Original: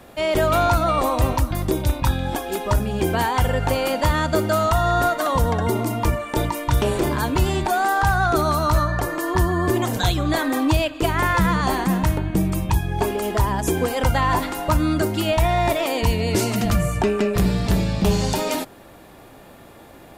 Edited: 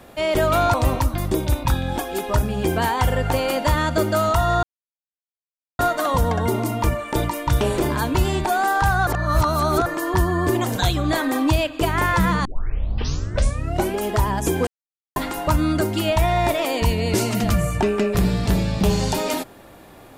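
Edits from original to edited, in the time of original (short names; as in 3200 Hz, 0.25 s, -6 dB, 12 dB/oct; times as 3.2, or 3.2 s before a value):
0.74–1.11 cut
5 insert silence 1.16 s
8.28–9.07 reverse
11.66 tape start 1.54 s
13.88–14.37 mute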